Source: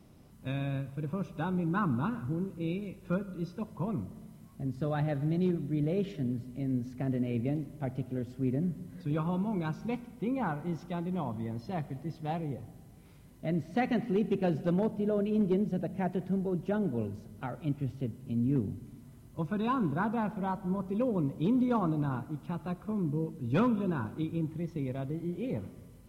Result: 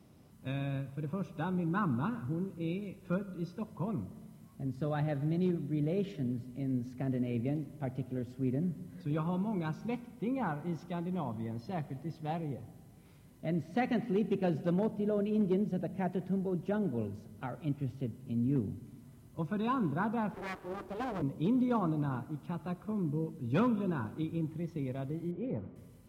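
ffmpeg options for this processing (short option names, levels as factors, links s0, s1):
-filter_complex "[0:a]asettb=1/sr,asplit=3[s0][s1][s2];[s0]atrim=end=20.344[s3];[s1]atrim=start=20.34:end=21.22,asetpts=PTS-STARTPTS,afade=t=in:d=0.004:c=qsin,afade=t=out:st=0.876:d=0.004:c=qsin,aeval=exprs='abs(val(0))':c=same[s4];[s2]atrim=start=21.216[s5];[s3][s4]acrossfade=d=0.004:c1=hsin:c2=qsin[s6];[s6][s5]acrossfade=d=0.004:c1=qsin:c2=hsin,asettb=1/sr,asplit=3[s7][s8][s9];[s7]atrim=end=25.314[s10];[s8]atrim=start=25.31:end=25.76,asetpts=PTS-STARTPTS,afade=t=in:d=0.004:c=qsin,afade=t=out:st=0.446:d=0.004:c=qsin,lowpass=1600[s11];[s9]atrim=start=25.756[s12];[s10][s11]acrossfade=d=0.004:c1=hsin:c2=qsin[s13];[s13][s12]acrossfade=d=0.004:c1=qsin:c2=hsin,highpass=63,volume=0.794"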